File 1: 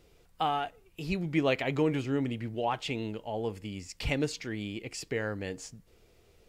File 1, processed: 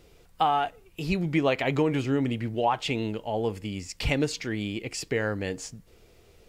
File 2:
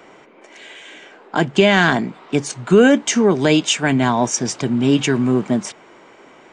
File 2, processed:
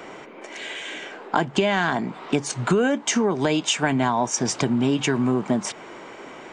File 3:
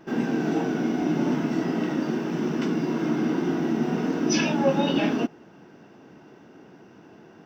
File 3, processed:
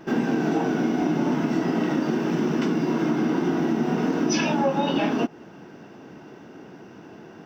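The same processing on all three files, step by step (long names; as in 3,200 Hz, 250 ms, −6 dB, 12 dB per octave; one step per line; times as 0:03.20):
dynamic equaliser 920 Hz, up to +6 dB, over −34 dBFS, Q 1.3
downward compressor 5 to 1, threshold −25 dBFS
level +5.5 dB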